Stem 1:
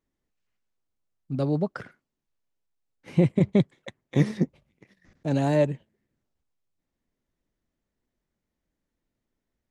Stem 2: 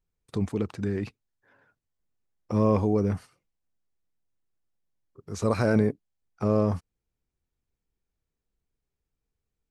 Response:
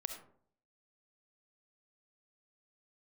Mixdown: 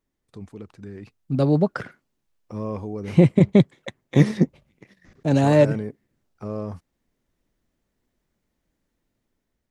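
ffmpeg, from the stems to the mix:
-filter_complex "[0:a]volume=2dB[a];[1:a]volume=-11.5dB[b];[a][b]amix=inputs=2:normalize=0,dynaudnorm=f=420:g=5:m=5dB"

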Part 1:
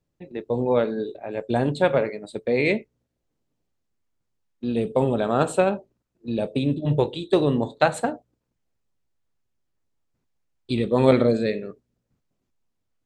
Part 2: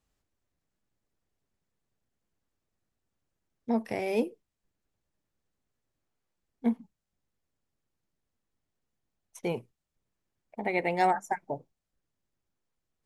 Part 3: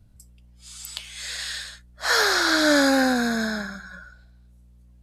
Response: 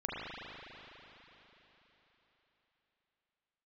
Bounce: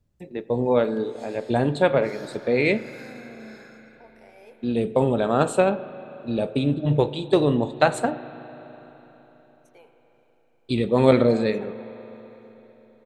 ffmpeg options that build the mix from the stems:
-filter_complex "[0:a]volume=0dB,asplit=3[a][b][c];[b]volume=-18.5dB[d];[1:a]highpass=f=460:w=0.5412,highpass=f=460:w=1.3066,adelay=300,volume=-20dB,asplit=2[e][f];[f]volume=-7dB[g];[2:a]acompressor=threshold=-22dB:ratio=6,acrossover=split=1000[h][i];[h]aeval=exprs='val(0)*(1-0.7/2+0.7/2*cos(2*PI*1.2*n/s))':c=same[j];[i]aeval=exprs='val(0)*(1-0.7/2-0.7/2*cos(2*PI*1.2*n/s))':c=same[k];[j][k]amix=inputs=2:normalize=0,volume=-17.5dB,asplit=2[l][m];[m]volume=-8dB[n];[c]apad=whole_len=221496[o];[l][o]sidechaincompress=threshold=-37dB:ratio=8:attack=16:release=213[p];[3:a]atrim=start_sample=2205[q];[d][g][n]amix=inputs=3:normalize=0[r];[r][q]afir=irnorm=-1:irlink=0[s];[a][e][p][s]amix=inputs=4:normalize=0"

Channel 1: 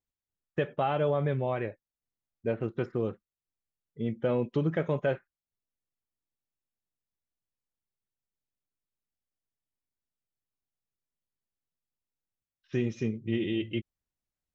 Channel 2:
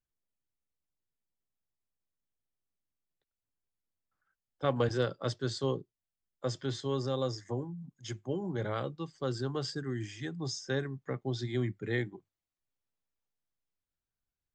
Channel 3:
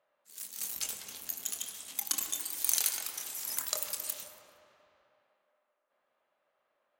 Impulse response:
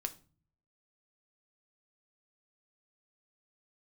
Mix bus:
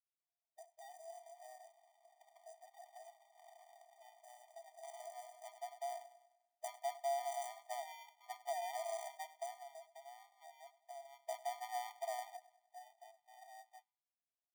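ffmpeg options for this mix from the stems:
-filter_complex "[0:a]aexciter=amount=5.5:drive=4.9:freq=4k,flanger=delay=6.4:depth=7.1:regen=-44:speed=0.28:shape=sinusoidal,volume=-16dB,asplit=3[a][b][c];[b]volume=-20.5dB[d];[1:a]lowpass=1.1k,acompressor=threshold=-35dB:ratio=3,adelay=200,volume=11.5dB,afade=t=out:st=9.31:d=0.32:silence=0.237137,afade=t=in:st=11.1:d=0.2:silence=0.251189,asplit=3[e][f][g];[f]volume=-16.5dB[h];[g]volume=-17dB[i];[2:a]acrossover=split=260|3000[j][k][l];[k]acompressor=threshold=-41dB:ratio=6[m];[j][m][l]amix=inputs=3:normalize=0,flanger=delay=5.7:depth=8.7:regen=-68:speed=0.3:shape=triangular,adelay=750,volume=-8dB,asplit=2[n][o];[o]volume=-15.5dB[p];[c]apad=whole_len=650097[q];[e][q]sidechaincompress=threshold=-58dB:ratio=8:attack=33:release=1130[r];[a][n]amix=inputs=2:normalize=0,highpass=f=210:w=0.5412,highpass=f=210:w=1.3066,equalizer=f=270:t=q:w=4:g=-7,equalizer=f=470:t=q:w=4:g=-4,equalizer=f=790:t=q:w=4:g=9,equalizer=f=2k:t=q:w=4:g=-7,lowpass=f=4.1k:w=0.5412,lowpass=f=4.1k:w=1.3066,alimiter=level_in=18.5dB:limit=-24dB:level=0:latency=1:release=87,volume=-18.5dB,volume=0dB[s];[3:a]atrim=start_sample=2205[t];[d][h][p]amix=inputs=3:normalize=0[u];[u][t]afir=irnorm=-1:irlink=0[v];[i]aecho=0:1:98|196|294|392|490|588|686:1|0.48|0.23|0.111|0.0531|0.0255|0.0122[w];[r][s][v][w]amix=inputs=4:normalize=0,acrusher=samples=40:mix=1:aa=0.000001,equalizer=f=690:w=7.2:g=9.5,afftfilt=real='re*eq(mod(floor(b*sr/1024/610),2),1)':imag='im*eq(mod(floor(b*sr/1024/610),2),1)':win_size=1024:overlap=0.75"

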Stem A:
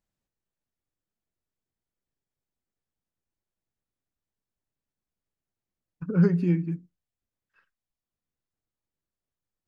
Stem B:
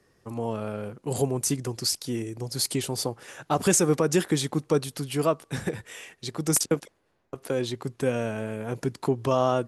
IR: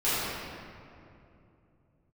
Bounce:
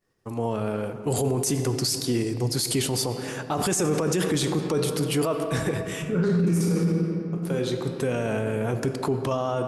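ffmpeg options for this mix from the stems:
-filter_complex "[0:a]bandreject=f=60:t=h:w=6,bandreject=f=120:t=h:w=6,bandreject=f=180:t=h:w=6,volume=-1dB,asplit=3[a][b][c];[b]volume=-8.5dB[d];[1:a]agate=range=-33dB:threshold=-55dB:ratio=3:detection=peak,dynaudnorm=f=180:g=9:m=4dB,volume=2dB,asplit=2[e][f];[f]volume=-22.5dB[g];[c]apad=whole_len=426713[h];[e][h]sidechaincompress=threshold=-43dB:ratio=4:attack=5.2:release=1120[i];[2:a]atrim=start_sample=2205[j];[d][g]amix=inputs=2:normalize=0[k];[k][j]afir=irnorm=-1:irlink=0[l];[a][i][l]amix=inputs=3:normalize=0,alimiter=limit=-16dB:level=0:latency=1:release=17"

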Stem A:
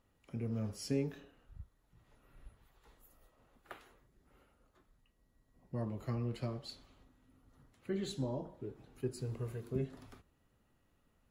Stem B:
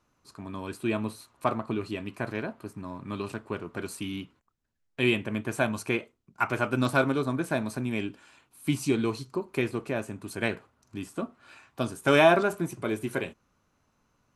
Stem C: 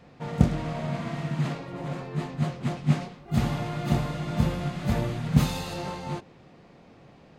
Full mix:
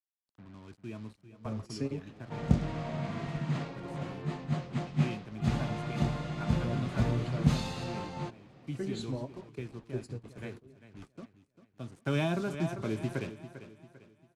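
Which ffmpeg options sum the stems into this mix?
-filter_complex "[0:a]adelay=900,volume=1dB[a];[1:a]equalizer=f=120:t=o:w=2:g=11.5,acrusher=bits=5:mix=0:aa=0.5,volume=-8dB,afade=t=in:st=11.93:d=0.29:silence=0.281838,asplit=3[b][c][d];[c]volume=-13.5dB[e];[2:a]adelay=2100,volume=-5dB[f];[d]apad=whole_len=538179[g];[a][g]sidechaingate=range=-22dB:threshold=-48dB:ratio=16:detection=peak[h];[e]aecho=0:1:396|792|1188|1584|1980:1|0.39|0.152|0.0593|0.0231[i];[h][b][f][i]amix=inputs=4:normalize=0,lowpass=7.8k,acrossover=split=290|3000[j][k][l];[k]acompressor=threshold=-33dB:ratio=6[m];[j][m][l]amix=inputs=3:normalize=0"

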